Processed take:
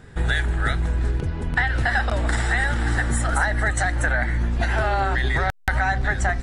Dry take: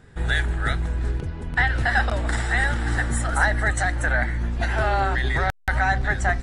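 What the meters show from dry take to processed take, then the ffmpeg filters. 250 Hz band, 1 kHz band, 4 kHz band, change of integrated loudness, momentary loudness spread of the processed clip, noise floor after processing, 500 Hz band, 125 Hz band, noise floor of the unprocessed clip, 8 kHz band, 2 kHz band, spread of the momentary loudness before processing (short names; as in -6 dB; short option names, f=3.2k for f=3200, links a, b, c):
+1.5 dB, 0.0 dB, +0.5 dB, +0.5 dB, 3 LU, -31 dBFS, +0.5 dB, +1.5 dB, -34 dBFS, +1.5 dB, 0.0 dB, 5 LU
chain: -af "acompressor=threshold=-23dB:ratio=4,volume=5dB"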